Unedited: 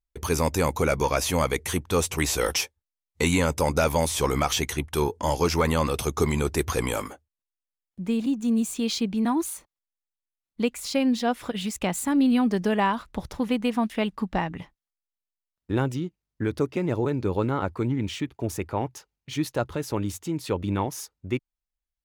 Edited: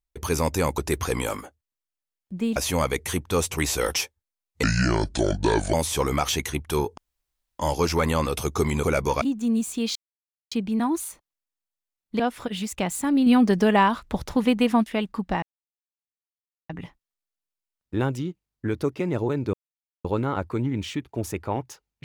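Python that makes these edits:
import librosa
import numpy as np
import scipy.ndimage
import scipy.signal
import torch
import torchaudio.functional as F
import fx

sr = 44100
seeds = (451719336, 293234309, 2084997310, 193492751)

y = fx.edit(x, sr, fx.swap(start_s=0.78, length_s=0.38, other_s=6.45, other_length_s=1.78),
    fx.speed_span(start_s=3.23, length_s=0.74, speed=0.67),
    fx.insert_room_tone(at_s=5.21, length_s=0.62),
    fx.insert_silence(at_s=8.97, length_s=0.56),
    fx.cut(start_s=10.65, length_s=0.58),
    fx.clip_gain(start_s=12.3, length_s=1.58, db=4.5),
    fx.insert_silence(at_s=14.46, length_s=1.27),
    fx.insert_silence(at_s=17.3, length_s=0.51), tone=tone)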